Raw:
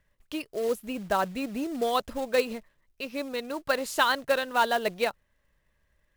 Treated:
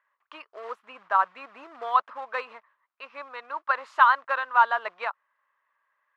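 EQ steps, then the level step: resonant high-pass 1.1 kHz, resonance Q 3.8; low-pass 1.9 kHz 12 dB/octave; 0.0 dB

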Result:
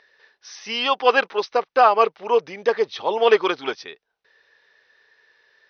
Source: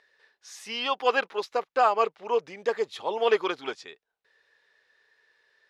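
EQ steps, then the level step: brick-wall FIR low-pass 6.3 kHz; +7.0 dB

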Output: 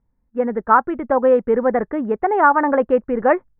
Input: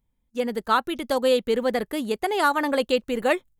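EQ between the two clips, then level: steep low-pass 1.8 kHz 36 dB/octave; dynamic bell 900 Hz, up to +4 dB, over -32 dBFS, Q 1.9; +5.5 dB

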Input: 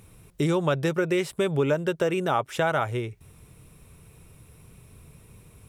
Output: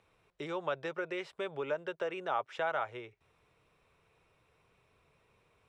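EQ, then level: three-band isolator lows -18 dB, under 450 Hz, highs -21 dB, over 5.9 kHz; treble shelf 3.8 kHz -8 dB; -7.0 dB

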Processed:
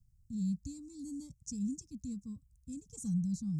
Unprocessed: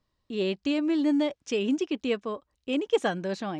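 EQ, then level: inverse Chebyshev band-stop 350–3200 Hz, stop band 50 dB; treble shelf 2.2 kHz -8 dB; +13.0 dB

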